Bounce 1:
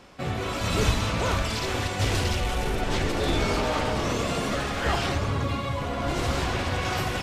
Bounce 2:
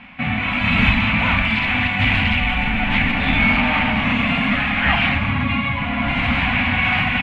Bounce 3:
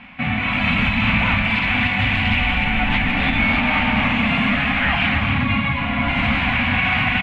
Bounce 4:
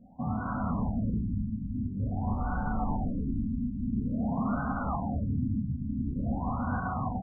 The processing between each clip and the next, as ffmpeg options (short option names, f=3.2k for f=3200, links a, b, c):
-af "firequalizer=gain_entry='entry(130,0);entry(240,11);entry(360,-20);entry(760,3);entry(1300,1);entry(2300,15);entry(5400,-24)':delay=0.05:min_phase=1,volume=4.5dB"
-filter_complex "[0:a]alimiter=limit=-8.5dB:level=0:latency=1:release=185,asplit=2[a][b];[b]aecho=0:1:250.7|288.6:0.282|0.355[c];[a][c]amix=inputs=2:normalize=0"
-af "asoftclip=type=hard:threshold=-13.5dB,afftfilt=real='re*lt(b*sr/1024,270*pow(1600/270,0.5+0.5*sin(2*PI*0.48*pts/sr)))':imag='im*lt(b*sr/1024,270*pow(1600/270,0.5+0.5*sin(2*PI*0.48*pts/sr)))':win_size=1024:overlap=0.75,volume=-8dB"